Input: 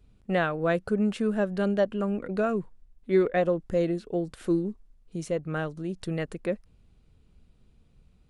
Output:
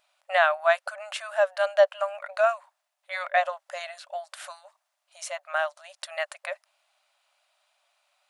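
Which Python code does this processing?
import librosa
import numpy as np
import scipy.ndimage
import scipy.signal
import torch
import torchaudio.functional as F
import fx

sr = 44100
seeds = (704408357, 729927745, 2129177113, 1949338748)

y = fx.brickwall_highpass(x, sr, low_hz=560.0)
y = y * librosa.db_to_amplitude(7.5)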